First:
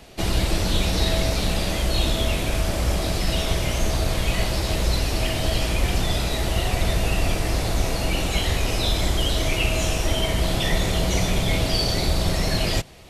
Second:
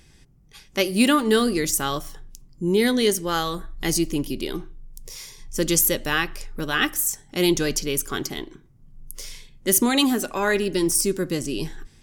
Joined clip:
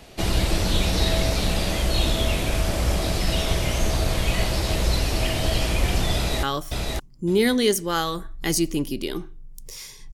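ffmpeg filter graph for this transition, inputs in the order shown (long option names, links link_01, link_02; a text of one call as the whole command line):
ffmpeg -i cue0.wav -i cue1.wav -filter_complex "[0:a]apad=whole_dur=10.13,atrim=end=10.13,atrim=end=6.432[link_01];[1:a]atrim=start=1.818:end=5.52[link_02];[link_01][link_02]acrossfade=duration=0.004:curve1=hsin:curve2=hsin,asplit=2[link_03][link_04];[link_04]afade=type=in:start_time=6.15:duration=0.01,afade=type=out:start_time=6.43:duration=0.01,aecho=0:1:560|1120|1680:0.668344|0.100252|0.0150377[link_05];[link_03][link_05]amix=inputs=2:normalize=0" out.wav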